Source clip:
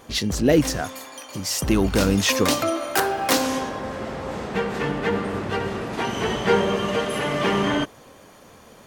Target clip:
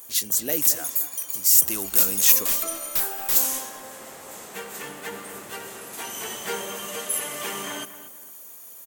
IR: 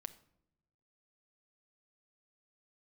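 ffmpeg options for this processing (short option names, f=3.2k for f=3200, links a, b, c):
-filter_complex "[0:a]aexciter=amount=2.1:drive=8.2:freq=6.7k,aemphasis=mode=production:type=riaa,asplit=3[a][b][c];[a]afade=t=out:st=2.39:d=0.02[d];[b]aeval=exprs='(tanh(2.82*val(0)+0.1)-tanh(0.1))/2.82':c=same,afade=t=in:st=2.39:d=0.02,afade=t=out:st=3.35:d=0.02[e];[c]afade=t=in:st=3.35:d=0.02[f];[d][e][f]amix=inputs=3:normalize=0,asplit=2[g][h];[h]adelay=231,lowpass=f=2.7k:p=1,volume=-12.5dB,asplit=2[i][j];[j]adelay=231,lowpass=f=2.7k:p=1,volume=0.35,asplit=2[k][l];[l]adelay=231,lowpass=f=2.7k:p=1,volume=0.35,asplit=2[m][n];[n]adelay=231,lowpass=f=2.7k:p=1,volume=0.35[o];[i][k][m][o]amix=inputs=4:normalize=0[p];[g][p]amix=inputs=2:normalize=0,volume=-10.5dB"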